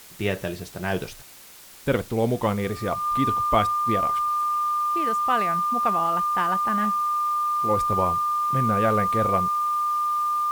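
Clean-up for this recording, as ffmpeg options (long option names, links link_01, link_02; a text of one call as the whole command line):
ffmpeg -i in.wav -af "bandreject=frequency=1200:width=30,afftdn=noise_reduction=28:noise_floor=-42" out.wav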